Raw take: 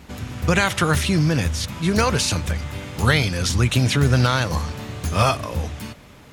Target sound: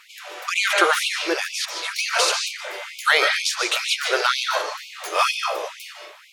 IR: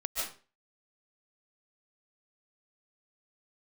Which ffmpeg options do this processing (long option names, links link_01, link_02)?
-filter_complex "[0:a]asplit=2[link_01][link_02];[1:a]atrim=start_sample=2205,lowpass=5800[link_03];[link_02][link_03]afir=irnorm=-1:irlink=0,volume=-4.5dB[link_04];[link_01][link_04]amix=inputs=2:normalize=0,afftfilt=real='re*gte(b*sr/1024,310*pow(2200/310,0.5+0.5*sin(2*PI*2.1*pts/sr)))':imag='im*gte(b*sr/1024,310*pow(2200/310,0.5+0.5*sin(2*PI*2.1*pts/sr)))':win_size=1024:overlap=0.75"